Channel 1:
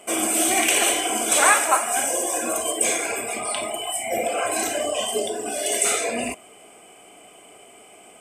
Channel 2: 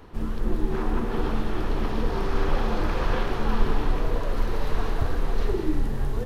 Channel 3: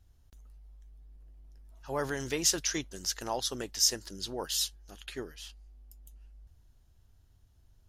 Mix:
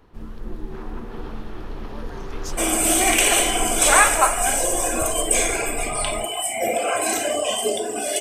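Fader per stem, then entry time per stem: +2.0, -7.0, -11.0 dB; 2.50, 0.00, 0.00 s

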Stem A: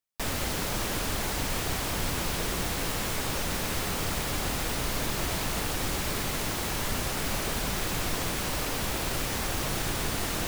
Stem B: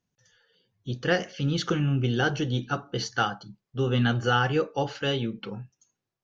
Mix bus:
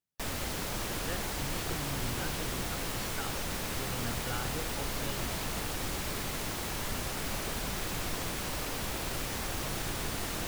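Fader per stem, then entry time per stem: -5.0, -17.0 dB; 0.00, 0.00 s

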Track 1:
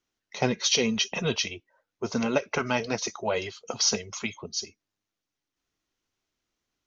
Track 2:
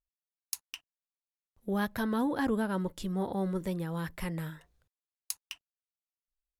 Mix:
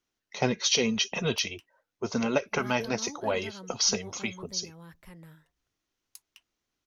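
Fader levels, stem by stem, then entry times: -1.0, -13.5 dB; 0.00, 0.85 s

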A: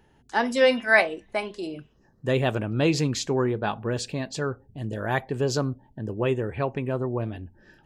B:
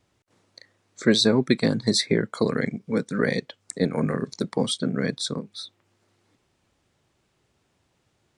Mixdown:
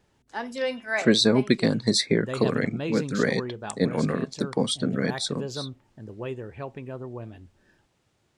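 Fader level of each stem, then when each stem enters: -9.0, -0.5 dB; 0.00, 0.00 s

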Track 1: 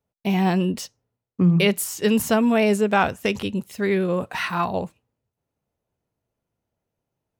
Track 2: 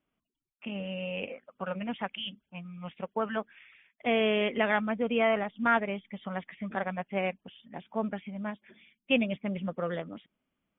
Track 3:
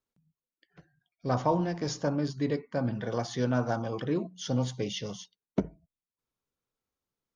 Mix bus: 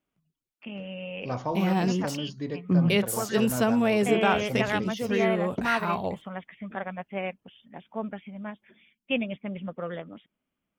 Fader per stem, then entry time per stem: -5.0, -1.5, -4.0 dB; 1.30, 0.00, 0.00 s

